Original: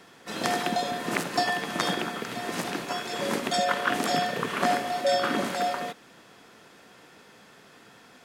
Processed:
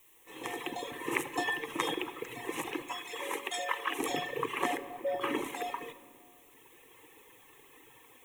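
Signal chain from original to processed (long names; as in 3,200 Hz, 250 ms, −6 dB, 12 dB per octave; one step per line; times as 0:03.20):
fade in at the beginning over 1.06 s
0:02.83–0:03.99: Bessel high-pass filter 560 Hz, order 2
reverb reduction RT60 1.9 s
0:04.77–0:05.21: low-pass filter 1,300 Hz 12 dB per octave
bit-depth reduction 10 bits, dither triangular
phaser with its sweep stopped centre 970 Hz, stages 8
rectangular room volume 3,600 cubic metres, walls mixed, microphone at 0.62 metres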